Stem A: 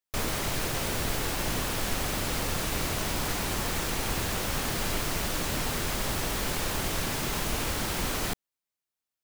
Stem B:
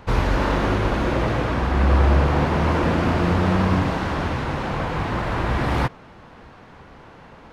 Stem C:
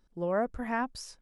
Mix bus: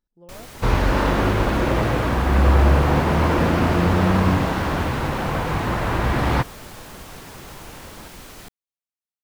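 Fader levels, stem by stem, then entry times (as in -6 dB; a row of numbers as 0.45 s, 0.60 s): -10.5 dB, +1.5 dB, -15.0 dB; 0.15 s, 0.55 s, 0.00 s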